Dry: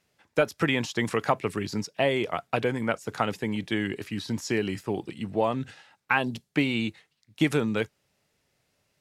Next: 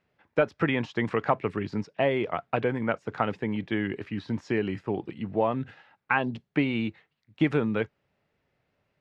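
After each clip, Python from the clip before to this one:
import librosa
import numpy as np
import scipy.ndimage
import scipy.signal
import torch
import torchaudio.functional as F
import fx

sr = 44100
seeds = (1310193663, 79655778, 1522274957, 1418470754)

y = scipy.signal.sosfilt(scipy.signal.butter(2, 2300.0, 'lowpass', fs=sr, output='sos'), x)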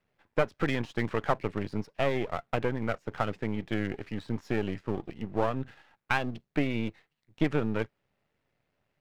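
y = np.where(x < 0.0, 10.0 ** (-12.0 / 20.0) * x, x)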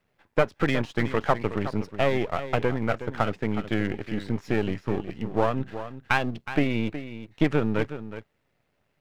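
y = x + 10.0 ** (-12.0 / 20.0) * np.pad(x, (int(368 * sr / 1000.0), 0))[:len(x)]
y = F.gain(torch.from_numpy(y), 4.5).numpy()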